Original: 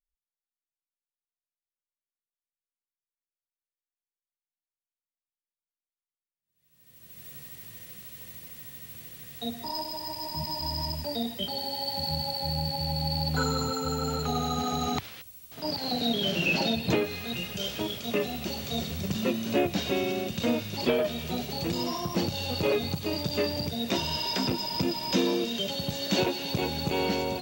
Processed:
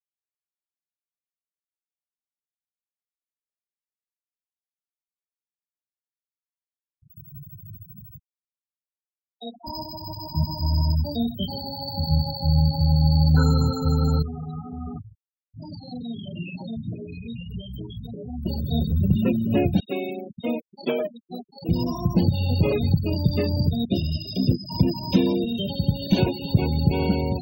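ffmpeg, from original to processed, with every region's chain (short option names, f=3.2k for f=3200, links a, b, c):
-filter_complex "[0:a]asettb=1/sr,asplit=3[a][b][c];[a]atrim=end=8.194[d];[b]atrim=start=8.19:end=9.67,asetpts=PTS-STARTPTS,afade=t=in:d=0.004:c=qsin,afade=t=out:st=1.476:d=0.004:c=qsin,highpass=390,lowpass=4.1k,asplit=2[e][f];[f]adelay=19,volume=-11dB[g];[e][g]amix=inputs=2:normalize=0,atrim=end_sample=65268[h];[c]atrim=start=9.666[i];[d][h]acrossfade=d=0.004:c1=hsin:c2=qsin[j];[j][i]acrossfade=d=0.004:c1=qsin:c2=hsin,asettb=1/sr,asplit=3[k][l][m];[k]atrim=end=14.224[n];[l]atrim=start=14.22:end=18.46,asetpts=PTS-STARTPTS,afade=t=in:d=0.004:c=qsin,afade=t=out:st=4.236:d=0.004:c=qsin,acompressor=threshold=-33dB:ratio=8:attack=3.2:release=140:knee=1:detection=peak,flanger=delay=16:depth=2.9:speed=1.7[o];[m]atrim=start=18.456[p];[n][o]acrossfade=d=0.004:c1=hsin:c2=qsin[q];[q][p]acrossfade=d=0.004:c1=qsin:c2=hsin,asettb=1/sr,asplit=3[r][s][t];[r]atrim=end=19.804[u];[s]atrim=start=19.8:end=21.69,asetpts=PTS-STARTPTS,afade=t=in:d=0.004:c=qsin,afade=t=out:st=1.886:d=0.004:c=qsin,agate=range=-33dB:threshold=-28dB:ratio=3:release=100:detection=peak,highpass=340[v];[t]atrim=start=21.686[w];[u][v]acrossfade=d=0.004:c1=hsin:c2=qsin[x];[x][w]acrossfade=d=0.004:c1=qsin:c2=hsin,asettb=1/sr,asplit=3[y][z][aa];[y]atrim=end=23.854[ab];[z]atrim=start=23.85:end=24.69,asetpts=PTS-STARTPTS,afade=t=in:d=0.004:c=qsin,afade=t=out:st=0.836:d=0.004:c=qsin,agate=range=-33dB:threshold=-29dB:ratio=3:release=100:detection=peak,asuperstop=centerf=1300:order=4:qfactor=0.67[ac];[aa]atrim=start=24.686[ad];[ab][ac]acrossfade=d=0.004:c1=hsin:c2=qsin[ae];[ae][ad]acrossfade=d=0.004:c1=qsin:c2=hsin,bass=f=250:g=11,treble=f=4k:g=-2,afftfilt=real='re*gte(hypot(re,im),0.0355)':imag='im*gte(hypot(re,im),0.0355)':win_size=1024:overlap=0.75,lowshelf=f=150:g=6.5"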